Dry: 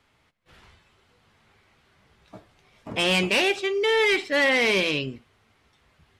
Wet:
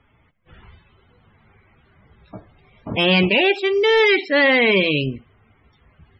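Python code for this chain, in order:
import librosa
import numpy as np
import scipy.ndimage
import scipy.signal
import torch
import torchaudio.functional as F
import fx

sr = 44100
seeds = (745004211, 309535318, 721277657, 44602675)

y = fx.spec_topn(x, sr, count=64)
y = fx.low_shelf(y, sr, hz=230.0, db=7.0)
y = y * 10.0 ** (5.0 / 20.0)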